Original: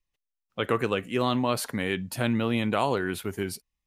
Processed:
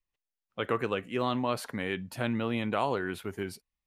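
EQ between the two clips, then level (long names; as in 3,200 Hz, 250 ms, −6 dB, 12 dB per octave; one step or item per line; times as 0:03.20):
low-shelf EQ 410 Hz −4 dB
high-shelf EQ 4,100 Hz −9.5 dB
−2.0 dB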